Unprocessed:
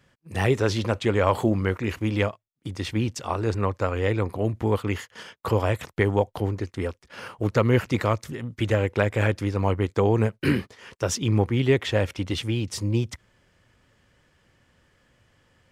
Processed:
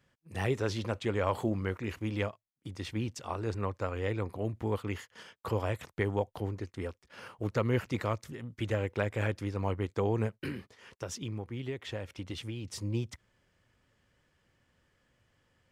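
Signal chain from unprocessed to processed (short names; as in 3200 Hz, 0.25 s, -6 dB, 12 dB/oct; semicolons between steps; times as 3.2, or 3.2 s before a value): 10.32–12.65 compressor 4:1, threshold -26 dBFS, peak gain reduction 10 dB; gain -9 dB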